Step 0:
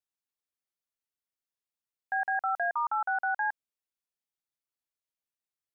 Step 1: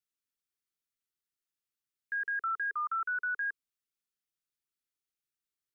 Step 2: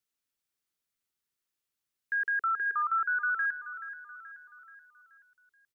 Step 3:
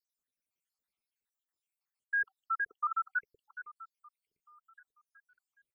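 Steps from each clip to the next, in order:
elliptic band-stop filter 430–1,200 Hz, stop band 50 dB
repeating echo 429 ms, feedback 49%, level −12.5 dB; level +4 dB
time-frequency cells dropped at random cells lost 78%

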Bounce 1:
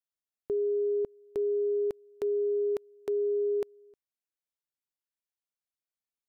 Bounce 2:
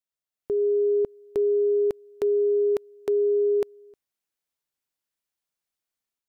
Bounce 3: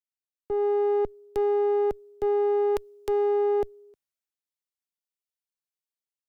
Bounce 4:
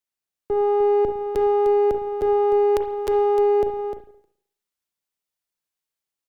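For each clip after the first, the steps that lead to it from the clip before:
automatic gain control gain up to 6.5 dB
one-sided soft clipper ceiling −28 dBFS; multiband upward and downward expander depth 40%; level +1.5 dB
single-tap delay 302 ms −8.5 dB; on a send at −7.5 dB: convolution reverb, pre-delay 35 ms; on the sum: level +5.5 dB

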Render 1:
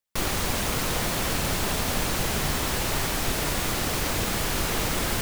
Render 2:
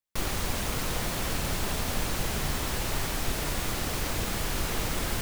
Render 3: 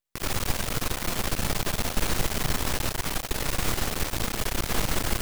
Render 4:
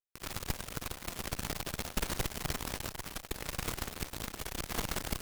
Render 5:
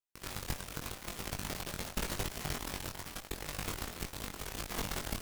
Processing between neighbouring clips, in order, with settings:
low-shelf EQ 79 Hz +5.5 dB; level −5 dB
half-wave rectification; level +6 dB
harmonic generator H 7 −21 dB, 8 −26 dB, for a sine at −9 dBFS; level −6.5 dB
chorus effect 0.86 Hz, delay 20 ms, depth 2 ms; level +1.5 dB

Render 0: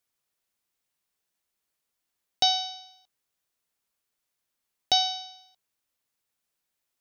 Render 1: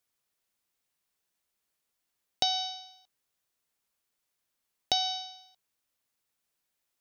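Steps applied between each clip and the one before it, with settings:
downward compressor 5 to 1, threshold −24 dBFS, peak gain reduction 6.5 dB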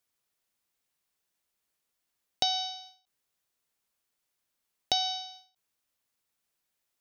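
every ending faded ahead of time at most 160 dB per second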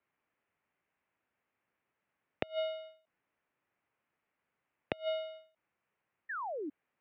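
gate with flip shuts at −16 dBFS, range −27 dB
single-sideband voice off tune −110 Hz 200–2,600 Hz
sound drawn into the spectrogram fall, 0:06.29–0:06.70, 270–1,900 Hz −44 dBFS
level +5.5 dB

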